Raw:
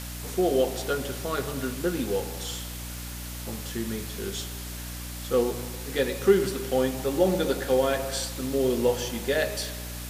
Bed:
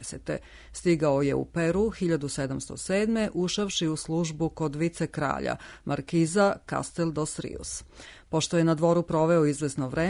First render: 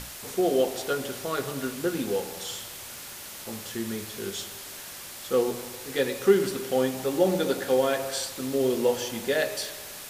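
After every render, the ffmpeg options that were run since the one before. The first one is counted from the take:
-af "bandreject=f=60:t=h:w=6,bandreject=f=120:t=h:w=6,bandreject=f=180:t=h:w=6,bandreject=f=240:t=h:w=6,bandreject=f=300:t=h:w=6"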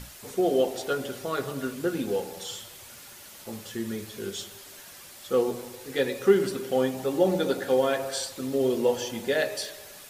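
-af "afftdn=nr=7:nf=-41"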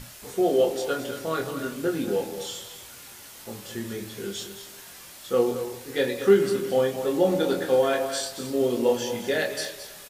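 -filter_complex "[0:a]asplit=2[a][b];[b]adelay=25,volume=-4.5dB[c];[a][c]amix=inputs=2:normalize=0,aecho=1:1:220:0.282"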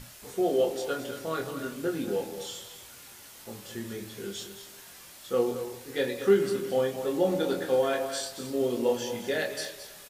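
-af "volume=-4dB"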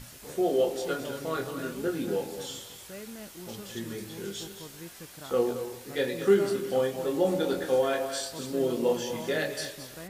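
-filter_complex "[1:a]volume=-18dB[a];[0:a][a]amix=inputs=2:normalize=0"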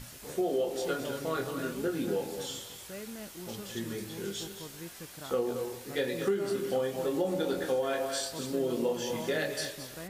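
-af "acompressor=threshold=-26dB:ratio=6"

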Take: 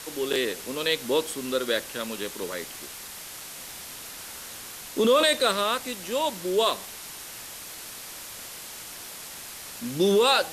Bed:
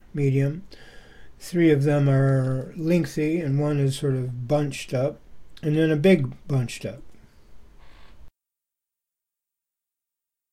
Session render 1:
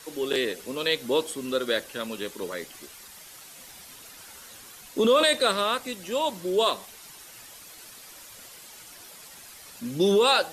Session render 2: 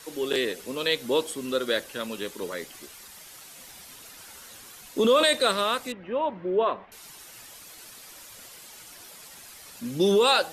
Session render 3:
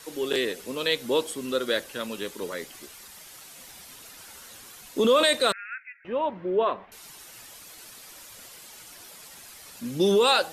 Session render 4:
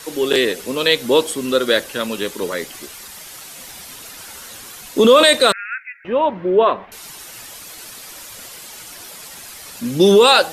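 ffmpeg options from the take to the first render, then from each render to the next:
-af "afftdn=nr=9:nf=-41"
-filter_complex "[0:a]asettb=1/sr,asplit=3[a][b][c];[a]atrim=end=5.924[d];[b]atrim=start=5.92:end=6.92,asetpts=PTS-STARTPTS,afade=t=in:d=0.004:c=qsin,afade=t=out:st=0.996:d=0.004:c=qsin,lowpass=f=2.2k:w=0.5412,lowpass=f=2.2k:w=1.3066[e];[c]atrim=start=6.916[f];[d][e]acrossfade=d=0.004:c1=hsin:c2=qsin[g];[g][f]acrossfade=d=0.004:c1=qsin:c2=hsin"
-filter_complex "[0:a]asettb=1/sr,asplit=3[a][b][c];[a]atrim=end=5.524[d];[b]atrim=start=5.52:end=6.05,asetpts=PTS-STARTPTS,afade=t=in:d=0.004:c=qsin,afade=t=out:st=0.526:d=0.004:c=qsin,asuperpass=centerf=1900:order=20:qfactor=1.6[e];[c]atrim=start=6.046[f];[d][e]acrossfade=d=0.004:c1=hsin:c2=qsin[g];[g][f]acrossfade=d=0.004:c1=qsin:c2=hsin"
-af "volume=10dB,alimiter=limit=-1dB:level=0:latency=1"

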